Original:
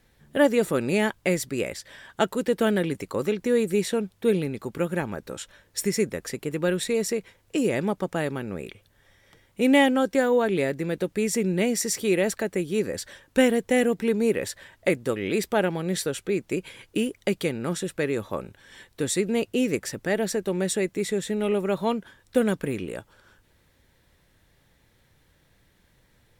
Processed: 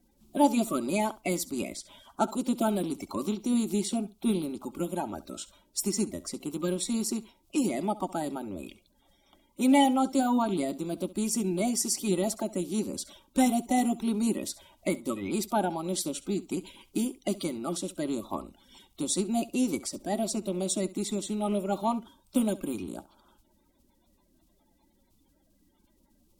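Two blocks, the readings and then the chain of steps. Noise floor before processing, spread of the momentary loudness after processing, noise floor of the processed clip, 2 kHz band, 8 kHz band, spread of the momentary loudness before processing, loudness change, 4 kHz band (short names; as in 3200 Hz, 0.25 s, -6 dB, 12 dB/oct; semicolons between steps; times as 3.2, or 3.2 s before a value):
-64 dBFS, 11 LU, -68 dBFS, -12.0 dB, -0.5 dB, 11 LU, -4.0 dB, -4.0 dB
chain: bin magnitudes rounded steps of 30 dB; fixed phaser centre 470 Hz, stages 6; flutter echo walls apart 11.6 m, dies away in 0.22 s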